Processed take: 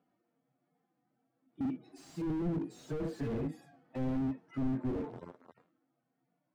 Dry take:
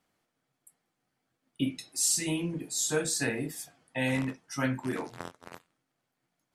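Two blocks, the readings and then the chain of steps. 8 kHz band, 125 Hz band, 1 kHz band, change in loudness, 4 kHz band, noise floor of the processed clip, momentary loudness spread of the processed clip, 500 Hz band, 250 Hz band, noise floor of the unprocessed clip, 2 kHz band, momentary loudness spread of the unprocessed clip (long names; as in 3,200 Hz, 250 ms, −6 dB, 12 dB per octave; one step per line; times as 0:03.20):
below −30 dB, −2.5 dB, −7.0 dB, −6.5 dB, −23.0 dB, −83 dBFS, 12 LU, −5.5 dB, −1.5 dB, −82 dBFS, −19.5 dB, 13 LU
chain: harmonic-percussive split with one part muted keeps harmonic
resonant band-pass 370 Hz, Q 0.73
slew-rate limiting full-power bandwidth 3 Hz
level +7.5 dB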